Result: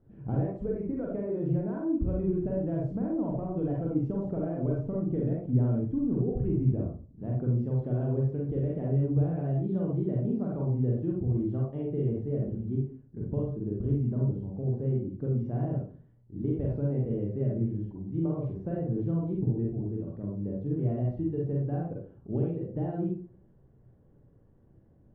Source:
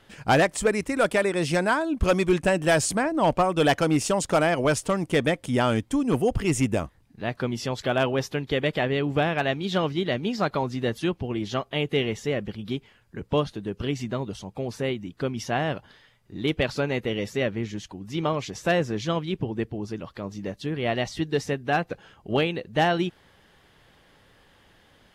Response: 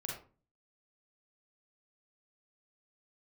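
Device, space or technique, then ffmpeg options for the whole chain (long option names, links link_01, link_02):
television next door: -filter_complex "[0:a]acompressor=threshold=-23dB:ratio=6,lowpass=330[link_01];[1:a]atrim=start_sample=2205[link_02];[link_01][link_02]afir=irnorm=-1:irlink=0,volume=1.5dB"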